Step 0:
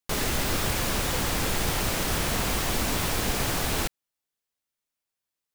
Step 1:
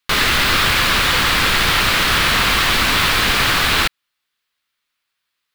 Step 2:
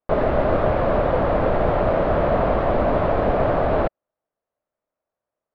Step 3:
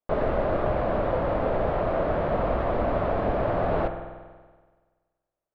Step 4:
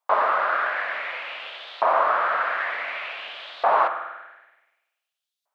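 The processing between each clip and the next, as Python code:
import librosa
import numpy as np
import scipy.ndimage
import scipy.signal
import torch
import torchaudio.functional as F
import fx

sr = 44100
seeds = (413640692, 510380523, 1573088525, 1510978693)

y1 = fx.band_shelf(x, sr, hz=2200.0, db=11.5, octaves=2.4)
y1 = y1 * 10.0 ** (5.5 / 20.0)
y2 = fx.lowpass_res(y1, sr, hz=620.0, q=4.9)
y3 = fx.rev_spring(y2, sr, rt60_s=1.5, pass_ms=(47,), chirp_ms=70, drr_db=7.0)
y3 = fx.rider(y3, sr, range_db=10, speed_s=0.5)
y3 = y3 * 10.0 ** (-6.5 / 20.0)
y4 = fx.filter_lfo_highpass(y3, sr, shape='saw_up', hz=0.55, low_hz=910.0, high_hz=3900.0, q=3.5)
y4 = y4 * 10.0 ** (6.5 / 20.0)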